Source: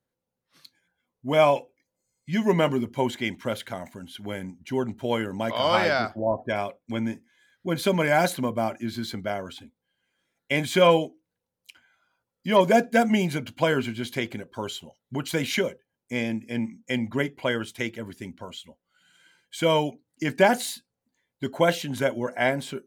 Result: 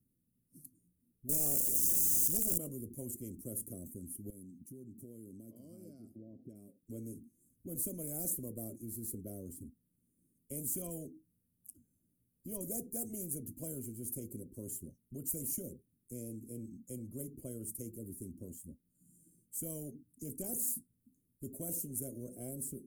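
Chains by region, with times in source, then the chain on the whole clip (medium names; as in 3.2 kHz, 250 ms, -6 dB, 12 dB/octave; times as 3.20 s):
1.29–2.58 s: zero-crossing glitches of -16 dBFS + waveshaping leveller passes 2 + loudspeaker Doppler distortion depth 0.65 ms
4.30–6.83 s: compression 3:1, threshold -43 dBFS + high-pass 590 Hz 6 dB/octave
whole clip: elliptic band-stop 280–9700 Hz, stop band 50 dB; spectrum-flattening compressor 4:1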